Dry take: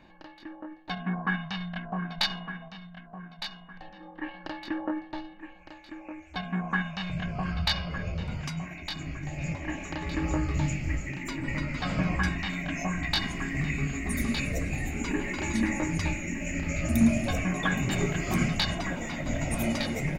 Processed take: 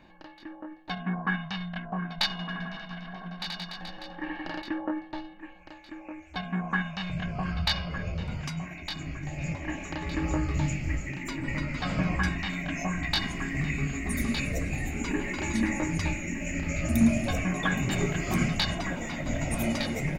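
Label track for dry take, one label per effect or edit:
2.310000	4.620000	reverse bouncing-ball echo first gap 80 ms, each gap 1.2×, echoes 5, each echo -2 dB

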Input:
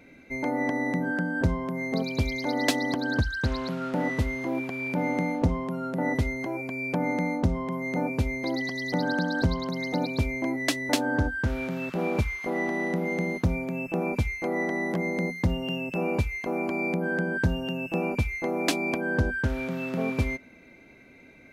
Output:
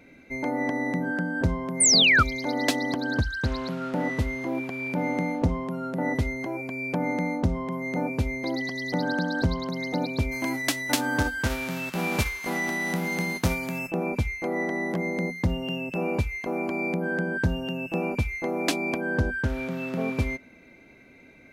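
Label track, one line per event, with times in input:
1.800000	2.230000	painted sound fall 1200–9700 Hz -18 dBFS
10.310000	13.890000	spectral whitening exponent 0.6

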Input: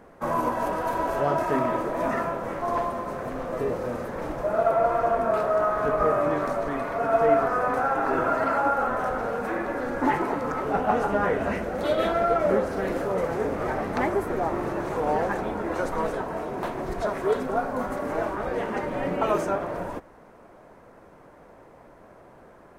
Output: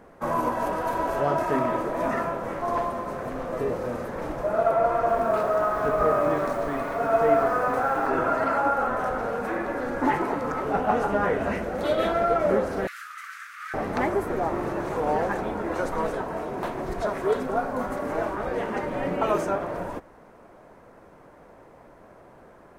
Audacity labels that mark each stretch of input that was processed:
4.950000	8.070000	lo-fi delay 0.132 s, feedback 55%, word length 7-bit, level -13 dB
12.870000	13.740000	steep high-pass 1200 Hz 96 dB/oct

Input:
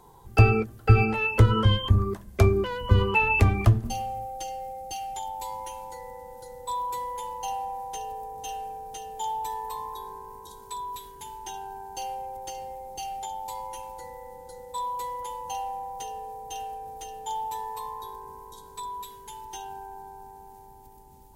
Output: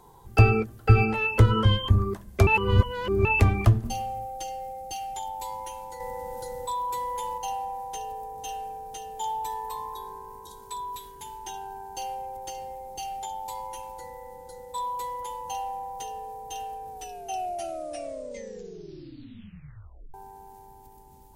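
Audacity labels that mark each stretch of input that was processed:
2.470000	3.250000	reverse
6.000000	7.380000	fast leveller amount 50%
16.890000	16.890000	tape stop 3.25 s

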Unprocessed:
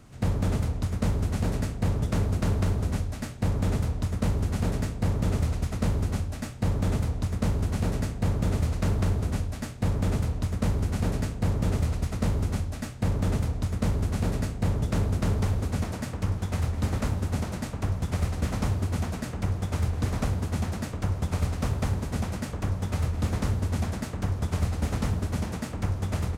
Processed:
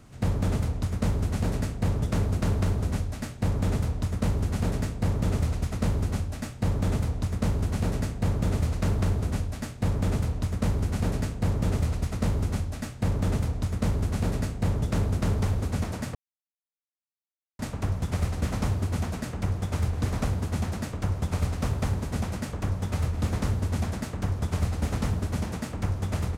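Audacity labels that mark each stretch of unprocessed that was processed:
16.150000	17.590000	mute

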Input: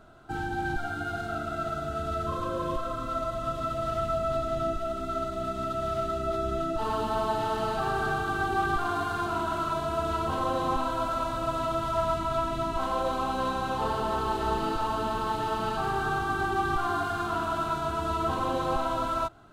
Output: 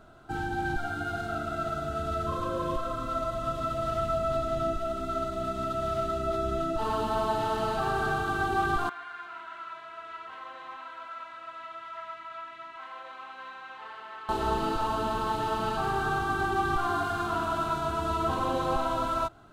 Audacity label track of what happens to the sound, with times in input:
8.890000	14.290000	band-pass 2000 Hz, Q 3.2

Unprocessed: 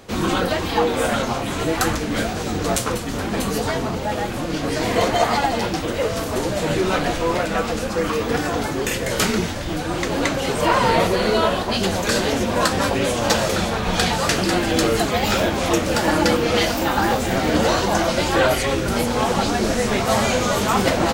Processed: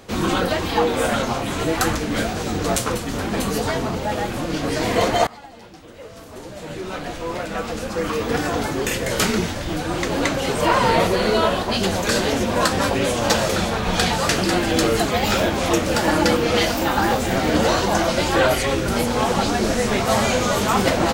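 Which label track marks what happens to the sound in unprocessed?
5.270000	8.430000	fade in quadratic, from -21.5 dB

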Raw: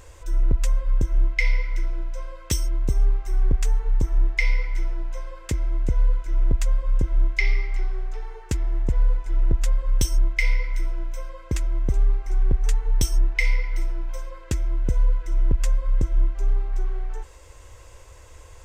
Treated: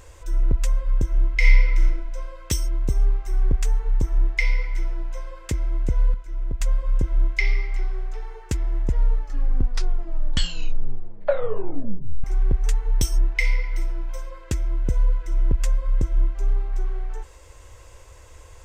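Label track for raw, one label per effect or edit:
1.310000	1.860000	reverb throw, RT60 0.83 s, DRR -1 dB
6.140000	6.610000	gain -7 dB
8.800000	8.800000	tape stop 3.44 s

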